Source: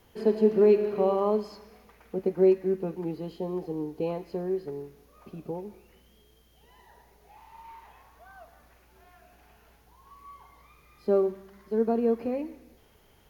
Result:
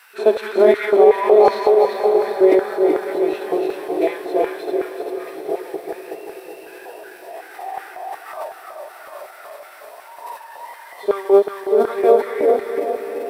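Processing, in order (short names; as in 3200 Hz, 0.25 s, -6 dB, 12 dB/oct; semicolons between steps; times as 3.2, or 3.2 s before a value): regenerating reverse delay 0.194 s, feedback 67%, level -1.5 dB; low shelf 220 Hz -9 dB; LFO high-pass square 2.7 Hz 650–1700 Hz; pre-echo 50 ms -22 dB; formant shift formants -3 st; on a send: diffused feedback echo 0.711 s, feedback 52%, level -12 dB; on the sum: maximiser +15 dB; gain -1 dB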